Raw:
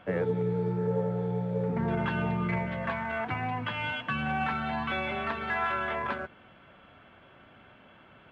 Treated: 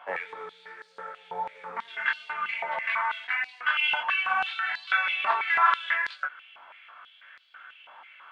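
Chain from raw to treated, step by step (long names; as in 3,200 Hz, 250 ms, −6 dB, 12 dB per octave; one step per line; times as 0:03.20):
chorus effect 2.6 Hz, delay 20 ms, depth 2.3 ms
high-pass on a step sequencer 6.1 Hz 900–4,300 Hz
level +5.5 dB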